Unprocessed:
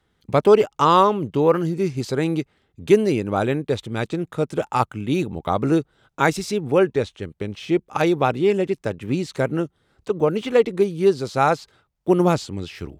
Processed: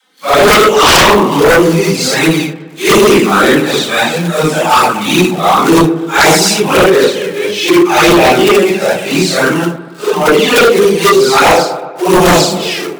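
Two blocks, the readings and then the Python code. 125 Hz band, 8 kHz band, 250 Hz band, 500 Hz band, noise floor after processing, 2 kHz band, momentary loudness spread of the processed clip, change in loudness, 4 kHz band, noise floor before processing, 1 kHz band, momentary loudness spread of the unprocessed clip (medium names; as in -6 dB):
+8.0 dB, +24.5 dB, +11.5 dB, +11.0 dB, -28 dBFS, +19.5 dB, 8 LU, +12.5 dB, +22.5 dB, -71 dBFS, +12.5 dB, 12 LU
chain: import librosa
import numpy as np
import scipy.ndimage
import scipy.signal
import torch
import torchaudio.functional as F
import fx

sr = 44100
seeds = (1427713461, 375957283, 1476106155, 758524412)

p1 = fx.phase_scramble(x, sr, seeds[0], window_ms=200)
p2 = fx.high_shelf(p1, sr, hz=2200.0, db=6.5)
p3 = fx.env_flanger(p2, sr, rest_ms=3.9, full_db=-13.5)
p4 = fx.quant_companded(p3, sr, bits=4)
p5 = p3 + (p4 * librosa.db_to_amplitude(-4.0))
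p6 = scipy.signal.sosfilt(scipy.signal.cheby1(4, 1.0, 160.0, 'highpass', fs=sr, output='sos'), p5)
p7 = fx.low_shelf(p6, sr, hz=270.0, db=-12.0)
p8 = fx.dispersion(p7, sr, late='lows', ms=41.0, hz=490.0)
p9 = p8 + fx.echo_wet_lowpass(p8, sr, ms=123, feedback_pct=54, hz=1700.0, wet_db=-14, dry=0)
p10 = fx.fold_sine(p9, sr, drive_db=11, ceiling_db=-5.5)
y = p10 * librosa.db_to_amplitude(3.0)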